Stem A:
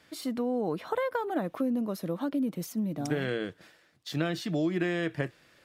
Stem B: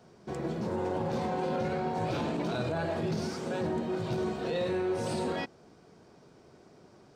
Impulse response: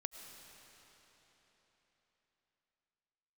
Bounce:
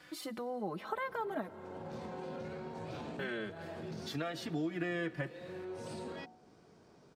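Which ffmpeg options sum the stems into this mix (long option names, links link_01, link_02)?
-filter_complex "[0:a]equalizer=frequency=1300:width_type=o:width=2:gain=4.5,asplit=2[link_01][link_02];[link_02]adelay=3.6,afreqshift=0.4[link_03];[link_01][link_03]amix=inputs=2:normalize=1,volume=2dB,asplit=3[link_04][link_05][link_06];[link_04]atrim=end=1.52,asetpts=PTS-STARTPTS,afade=type=out:start_time=1.516:duration=0.004:curve=hsin[link_07];[link_05]atrim=start=1.52:end=3.19,asetpts=PTS-STARTPTS,volume=0[link_08];[link_06]atrim=start=3.19,asetpts=PTS-STARTPTS,afade=type=in:duration=0.004:curve=hsin[link_09];[link_07][link_08][link_09]concat=n=3:v=0:a=1,asplit=3[link_10][link_11][link_12];[link_11]volume=-8dB[link_13];[1:a]bandreject=frequency=56.88:width_type=h:width=4,bandreject=frequency=113.76:width_type=h:width=4,bandreject=frequency=170.64:width_type=h:width=4,bandreject=frequency=227.52:width_type=h:width=4,bandreject=frequency=284.4:width_type=h:width=4,bandreject=frequency=341.28:width_type=h:width=4,bandreject=frequency=398.16:width_type=h:width=4,bandreject=frequency=455.04:width_type=h:width=4,bandreject=frequency=511.92:width_type=h:width=4,bandreject=frequency=568.8:width_type=h:width=4,bandreject=frequency=625.68:width_type=h:width=4,bandreject=frequency=682.56:width_type=h:width=4,bandreject=frequency=739.44:width_type=h:width=4,bandreject=frequency=796.32:width_type=h:width=4,bandreject=frequency=853.2:width_type=h:width=4,bandreject=frequency=910.08:width_type=h:width=4,adelay=800,volume=-4.5dB[link_14];[link_12]apad=whole_len=350745[link_15];[link_14][link_15]sidechaincompress=threshold=-34dB:ratio=8:attack=7.3:release=701[link_16];[2:a]atrim=start_sample=2205[link_17];[link_13][link_17]afir=irnorm=-1:irlink=0[link_18];[link_10][link_16][link_18]amix=inputs=3:normalize=0,acompressor=threshold=-52dB:ratio=1.5"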